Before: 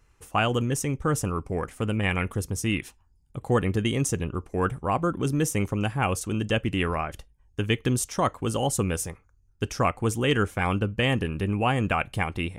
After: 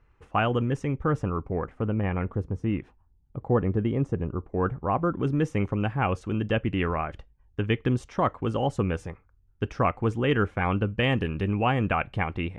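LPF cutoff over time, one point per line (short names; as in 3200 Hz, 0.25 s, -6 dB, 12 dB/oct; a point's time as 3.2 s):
0.95 s 2200 Hz
2.09 s 1100 Hz
4.47 s 1100 Hz
5.33 s 2300 Hz
10.64 s 2300 Hz
11.31 s 4400 Hz
11.96 s 2500 Hz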